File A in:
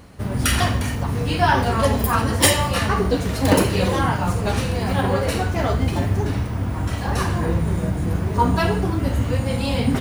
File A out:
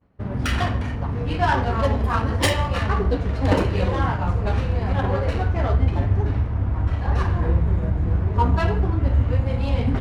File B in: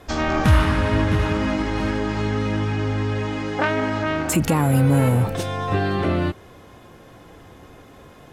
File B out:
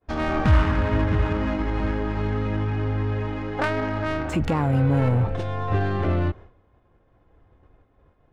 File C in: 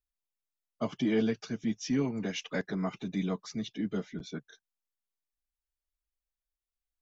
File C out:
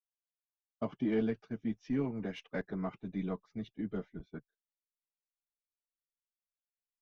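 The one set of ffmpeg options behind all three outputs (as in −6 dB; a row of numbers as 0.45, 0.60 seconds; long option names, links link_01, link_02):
-af "agate=range=-33dB:threshold=-35dB:ratio=3:detection=peak,adynamicsmooth=sensitivity=1:basefreq=2100,asubboost=boost=4:cutoff=80,volume=-2.5dB"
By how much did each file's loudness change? −1.5, −3.0, −4.0 LU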